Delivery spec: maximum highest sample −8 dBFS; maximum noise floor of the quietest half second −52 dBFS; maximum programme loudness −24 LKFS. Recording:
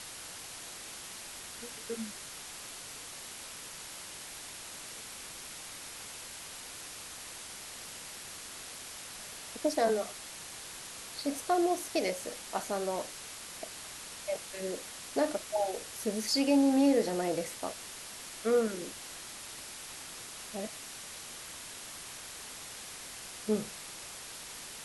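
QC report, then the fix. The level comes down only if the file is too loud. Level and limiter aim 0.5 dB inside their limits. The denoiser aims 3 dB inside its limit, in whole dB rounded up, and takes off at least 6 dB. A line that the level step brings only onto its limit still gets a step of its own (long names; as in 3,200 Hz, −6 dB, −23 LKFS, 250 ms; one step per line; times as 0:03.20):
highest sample −16.0 dBFS: in spec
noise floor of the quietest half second −45 dBFS: out of spec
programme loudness −36.0 LKFS: in spec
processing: broadband denoise 10 dB, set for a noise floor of −45 dBFS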